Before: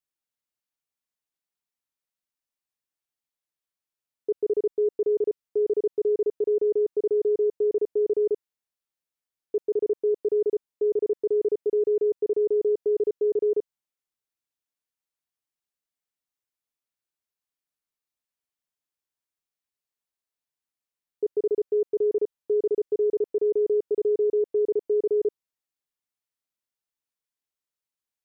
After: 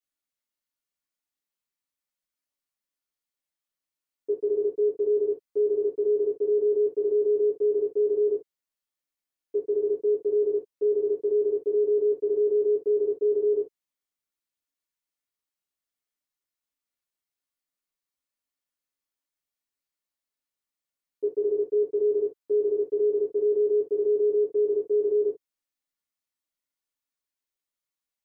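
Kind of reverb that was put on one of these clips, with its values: non-linear reverb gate 90 ms falling, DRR -7 dB; gain -8 dB

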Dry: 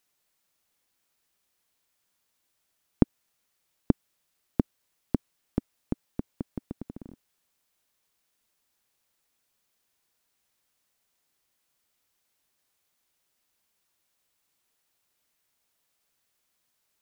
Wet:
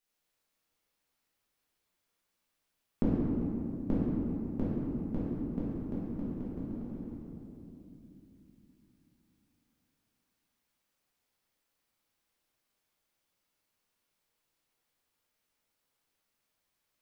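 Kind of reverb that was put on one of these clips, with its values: shoebox room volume 130 m³, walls hard, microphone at 1.3 m; gain -13 dB

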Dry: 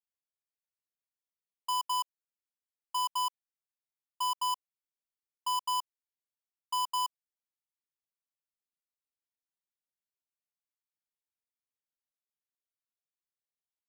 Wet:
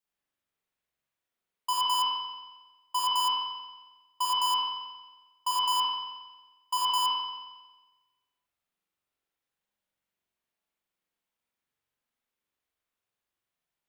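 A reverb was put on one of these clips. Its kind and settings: spring tank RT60 1.2 s, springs 44 ms, chirp 40 ms, DRR -7 dB; gain +3.5 dB

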